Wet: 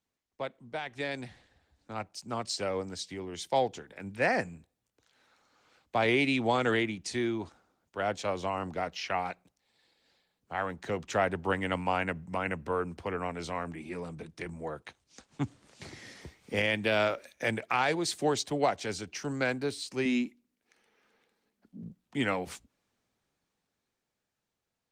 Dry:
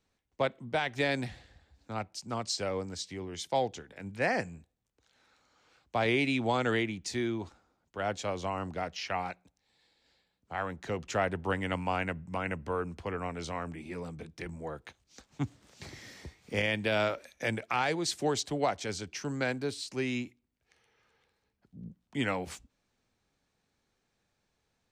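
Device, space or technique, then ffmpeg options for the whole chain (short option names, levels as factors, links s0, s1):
video call: -filter_complex "[0:a]asettb=1/sr,asplit=3[s0][s1][s2];[s0]atrim=end=20.054[s3];[s1]atrim=start=20.05:end=21.83,asetpts=PTS-STARTPTS,afade=t=in:d=0.004:c=qsin,afade=t=out:st=1.776:d=0.004:c=qsin,lowshelf=f=160:t=q:w=3:g=-9[s4];[s2]atrim=start=21.826[s5];[s3][s4]acrossfade=d=0.004:c1=hsin:c2=qsin[s6];[s6][s5]acrossfade=d=0.004:c1=qsin:c2=hsin,highpass=f=120:p=1,dynaudnorm=f=170:g=21:m=2.82,volume=0.473" -ar 48000 -c:a libopus -b:a 24k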